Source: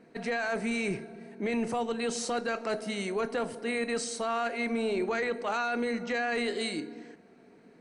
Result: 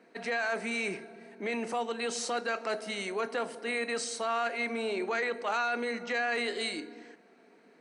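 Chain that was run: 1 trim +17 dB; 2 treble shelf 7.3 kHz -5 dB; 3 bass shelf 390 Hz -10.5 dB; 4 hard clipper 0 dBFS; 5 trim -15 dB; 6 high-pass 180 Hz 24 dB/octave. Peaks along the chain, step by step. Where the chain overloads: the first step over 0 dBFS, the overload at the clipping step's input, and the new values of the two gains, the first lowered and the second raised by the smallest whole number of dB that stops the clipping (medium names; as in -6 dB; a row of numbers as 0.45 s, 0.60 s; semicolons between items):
-5.0 dBFS, -5.5 dBFS, -5.5 dBFS, -5.5 dBFS, -20.5 dBFS, -20.0 dBFS; nothing clips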